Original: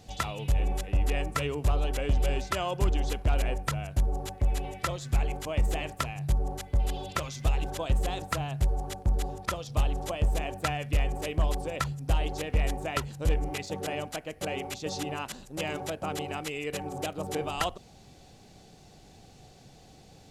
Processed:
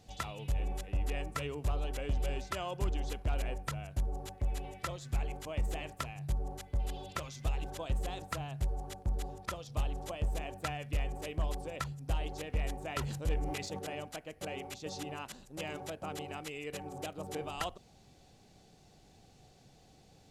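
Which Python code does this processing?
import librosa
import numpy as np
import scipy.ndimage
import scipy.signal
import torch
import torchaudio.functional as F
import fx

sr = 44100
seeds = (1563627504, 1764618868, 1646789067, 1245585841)

y = fx.sustainer(x, sr, db_per_s=38.0, at=(12.8, 13.79))
y = F.gain(torch.from_numpy(y), -7.5).numpy()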